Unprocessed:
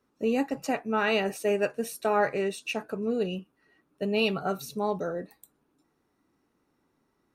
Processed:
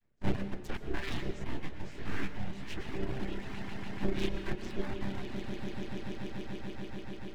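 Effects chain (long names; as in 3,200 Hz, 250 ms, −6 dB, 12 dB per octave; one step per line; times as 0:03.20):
channel vocoder with a chord as carrier major triad, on C3
echo that builds up and dies away 145 ms, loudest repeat 8, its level −14 dB
full-wave rectification
flat-topped bell 790 Hz −10.5 dB
downward compressor 2.5 to 1, threshold −31 dBFS, peak gain reduction 6 dB
noise gate −30 dBFS, range −7 dB
reverb reduction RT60 0.83 s
convolution reverb RT60 1.1 s, pre-delay 106 ms, DRR 9 dB
0:01.44–0:02.78: micro pitch shift up and down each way 53 cents
level +9.5 dB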